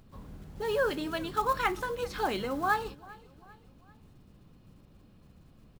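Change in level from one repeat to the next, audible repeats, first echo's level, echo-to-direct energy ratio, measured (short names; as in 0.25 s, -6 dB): -6.5 dB, 2, -22.0 dB, -21.0 dB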